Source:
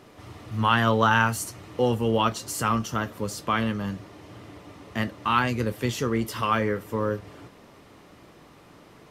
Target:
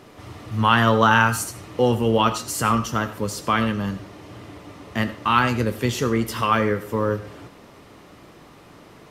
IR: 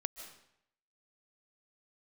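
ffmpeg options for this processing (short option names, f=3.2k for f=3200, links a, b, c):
-filter_complex "[0:a]asplit=2[a][b];[1:a]atrim=start_sample=2205,asetrate=88200,aresample=44100[c];[b][c]afir=irnorm=-1:irlink=0,volume=7.5dB[d];[a][d]amix=inputs=2:normalize=0,volume=-2dB"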